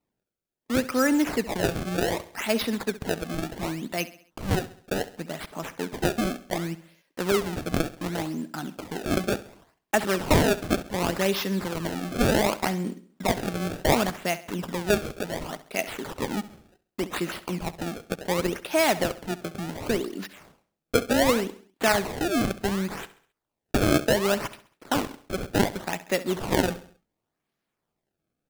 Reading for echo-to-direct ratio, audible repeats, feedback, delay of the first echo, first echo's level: -15.0 dB, 3, 45%, 67 ms, -16.0 dB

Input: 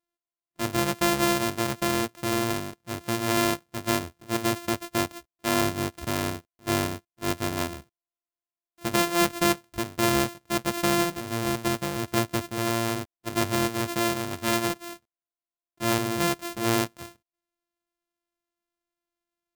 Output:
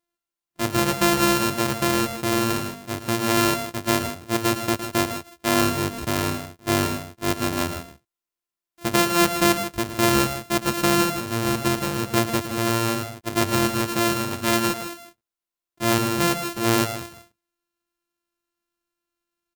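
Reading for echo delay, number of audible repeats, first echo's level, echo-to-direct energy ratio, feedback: 111 ms, 2, -11.0 dB, -8.0 dB, no regular repeats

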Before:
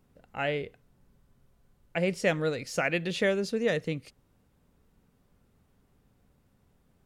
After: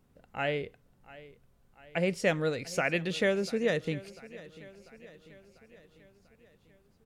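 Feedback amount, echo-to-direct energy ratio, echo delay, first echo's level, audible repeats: 56%, -17.5 dB, 694 ms, -19.0 dB, 4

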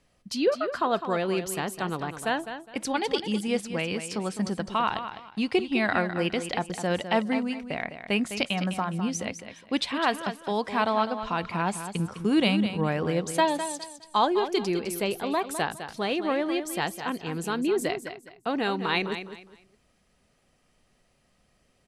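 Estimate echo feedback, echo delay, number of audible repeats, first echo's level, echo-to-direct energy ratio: 26%, 206 ms, 3, -10.0 dB, -9.5 dB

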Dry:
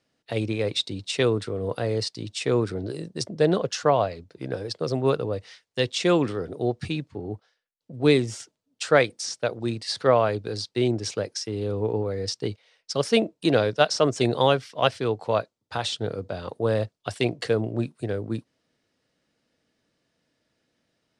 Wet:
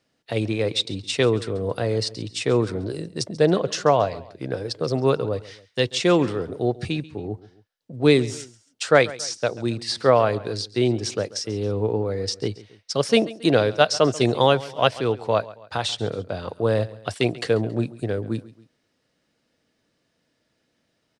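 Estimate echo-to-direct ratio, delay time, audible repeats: -18.0 dB, 137 ms, 2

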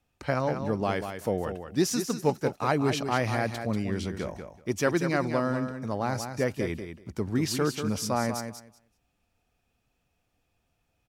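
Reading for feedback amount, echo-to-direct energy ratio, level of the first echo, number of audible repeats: 16%, -8.0 dB, -8.0 dB, 2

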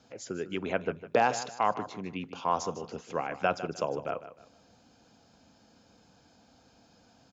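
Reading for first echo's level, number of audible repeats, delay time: -13.5 dB, 3, 153 ms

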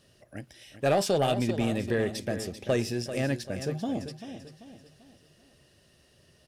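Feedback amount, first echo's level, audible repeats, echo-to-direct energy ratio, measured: 41%, -11.0 dB, 4, -10.0 dB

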